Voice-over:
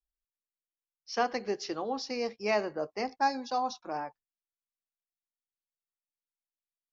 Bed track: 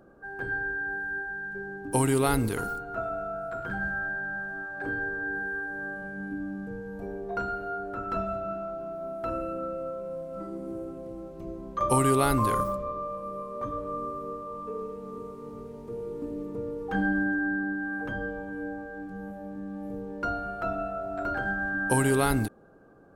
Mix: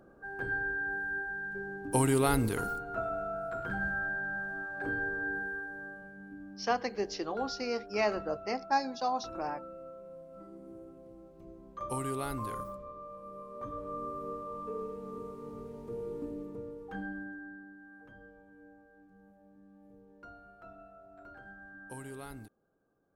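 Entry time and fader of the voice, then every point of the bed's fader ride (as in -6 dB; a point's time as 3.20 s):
5.50 s, -1.0 dB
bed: 5.27 s -2.5 dB
6.20 s -12.5 dB
12.97 s -12.5 dB
14.30 s -3 dB
16.15 s -3 dB
17.71 s -21 dB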